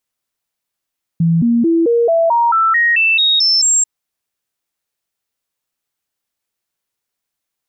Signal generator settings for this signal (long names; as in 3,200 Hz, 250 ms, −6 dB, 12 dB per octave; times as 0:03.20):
stepped sweep 166 Hz up, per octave 2, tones 12, 0.22 s, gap 0.00 s −9.5 dBFS